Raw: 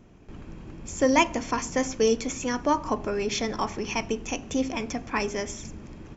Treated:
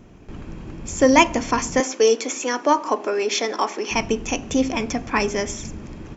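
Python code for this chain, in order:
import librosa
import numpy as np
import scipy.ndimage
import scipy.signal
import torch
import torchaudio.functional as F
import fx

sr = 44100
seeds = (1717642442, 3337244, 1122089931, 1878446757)

y = fx.highpass(x, sr, hz=300.0, slope=24, at=(1.8, 3.91))
y = y * librosa.db_to_amplitude(6.5)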